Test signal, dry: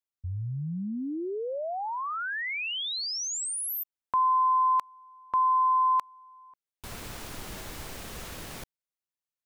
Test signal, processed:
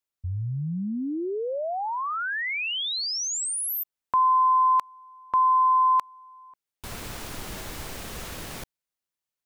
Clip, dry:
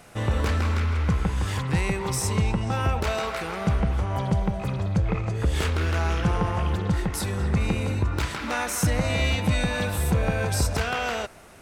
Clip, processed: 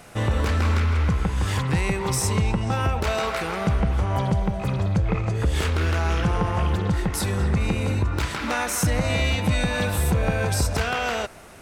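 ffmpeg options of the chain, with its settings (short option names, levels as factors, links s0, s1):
-af "alimiter=limit=0.15:level=0:latency=1:release=257,volume=1.5"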